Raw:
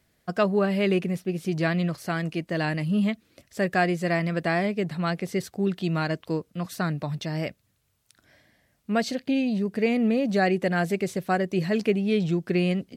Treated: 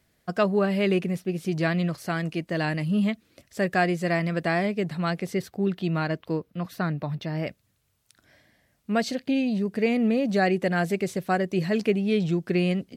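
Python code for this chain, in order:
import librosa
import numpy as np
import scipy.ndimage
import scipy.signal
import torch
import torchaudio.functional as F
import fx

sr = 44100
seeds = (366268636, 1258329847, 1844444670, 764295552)

y = fx.peak_eq(x, sr, hz=7900.0, db=fx.line((5.33, -6.0), (7.46, -14.0)), octaves=1.4, at=(5.33, 7.46), fade=0.02)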